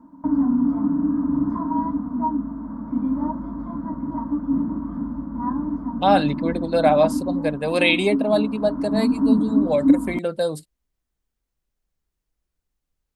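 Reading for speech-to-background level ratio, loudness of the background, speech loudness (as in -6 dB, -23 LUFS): 2.0 dB, -24.0 LUFS, -22.0 LUFS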